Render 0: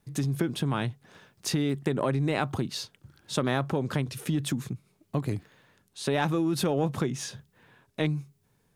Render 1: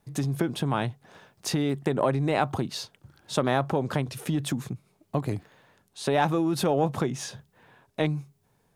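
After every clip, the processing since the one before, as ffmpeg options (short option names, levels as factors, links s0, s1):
-af "equalizer=f=740:w=1.2:g=6.5"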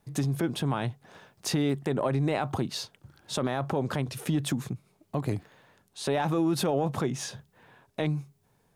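-af "alimiter=limit=0.141:level=0:latency=1:release=24"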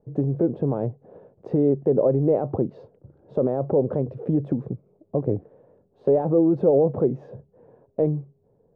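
-af "lowpass=f=500:t=q:w=3.5,volume=1.33"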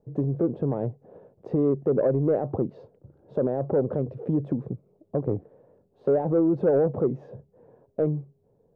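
-af "asoftclip=type=tanh:threshold=0.316,volume=0.794"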